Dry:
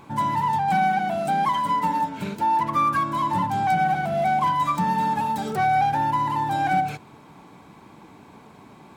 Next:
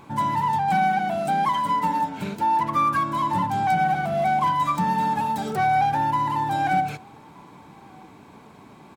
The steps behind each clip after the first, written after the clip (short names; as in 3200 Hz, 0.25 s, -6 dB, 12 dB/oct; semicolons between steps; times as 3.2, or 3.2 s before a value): outdoor echo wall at 210 m, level -28 dB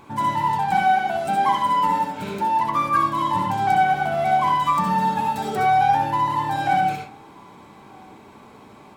bell 160 Hz -6.5 dB 0.39 oct; on a send at -1 dB: reverb RT60 0.35 s, pre-delay 59 ms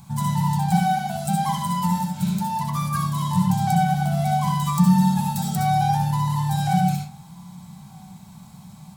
EQ curve 120 Hz 0 dB, 170 Hz +12 dB, 290 Hz -24 dB, 460 Hz -29 dB, 730 Hz -10 dB, 1100 Hz -15 dB, 2500 Hz -14 dB, 4200 Hz -2 dB, 8100 Hz +4 dB, 13000 Hz +6 dB; gain +6 dB